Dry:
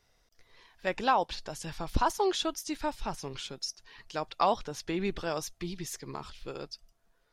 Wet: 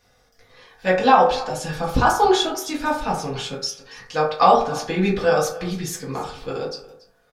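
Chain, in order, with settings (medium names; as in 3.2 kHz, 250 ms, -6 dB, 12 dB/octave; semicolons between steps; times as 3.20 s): delay 282 ms -19.5 dB; reverberation RT60 0.55 s, pre-delay 3 ms, DRR -5.5 dB; trim +5.5 dB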